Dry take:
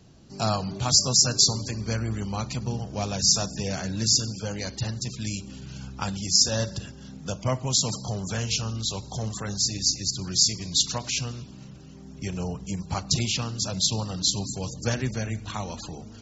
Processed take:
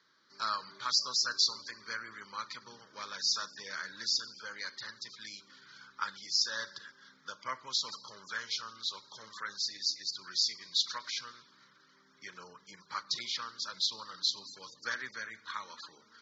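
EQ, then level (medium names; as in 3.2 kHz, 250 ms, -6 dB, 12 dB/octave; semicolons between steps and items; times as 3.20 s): Butterworth band-pass 2.3 kHz, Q 0.58; treble shelf 3.5 kHz -12 dB; static phaser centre 2.7 kHz, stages 6; +4.0 dB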